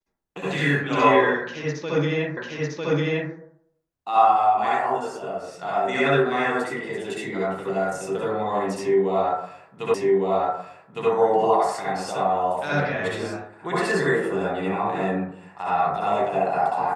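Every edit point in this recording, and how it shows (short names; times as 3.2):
2.37 repeat of the last 0.95 s
9.94 repeat of the last 1.16 s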